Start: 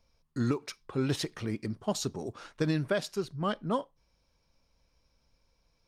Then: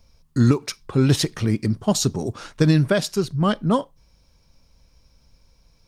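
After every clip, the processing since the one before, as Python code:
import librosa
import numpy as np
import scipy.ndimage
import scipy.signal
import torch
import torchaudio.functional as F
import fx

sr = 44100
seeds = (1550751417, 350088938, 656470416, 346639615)

y = fx.bass_treble(x, sr, bass_db=7, treble_db=5)
y = y * 10.0 ** (8.5 / 20.0)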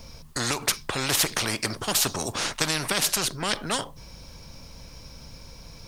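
y = fx.spectral_comp(x, sr, ratio=4.0)
y = y * 10.0 ** (-2.0 / 20.0)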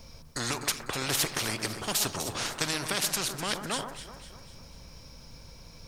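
y = fx.echo_alternate(x, sr, ms=125, hz=1700.0, feedback_pct=67, wet_db=-8)
y = y * 10.0 ** (-5.0 / 20.0)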